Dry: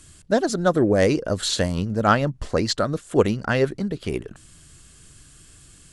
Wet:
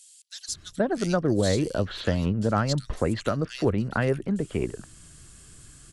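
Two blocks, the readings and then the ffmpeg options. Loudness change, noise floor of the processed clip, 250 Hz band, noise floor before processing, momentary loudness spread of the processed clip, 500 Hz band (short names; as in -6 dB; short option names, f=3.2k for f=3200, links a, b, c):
-4.5 dB, -53 dBFS, -3.0 dB, -50 dBFS, 11 LU, -5.5 dB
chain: -filter_complex "[0:a]acrossover=split=3000[a][b];[a]adelay=480[c];[c][b]amix=inputs=2:normalize=0,acrossover=split=180[d][e];[e]acompressor=threshold=-22dB:ratio=6[f];[d][f]amix=inputs=2:normalize=0"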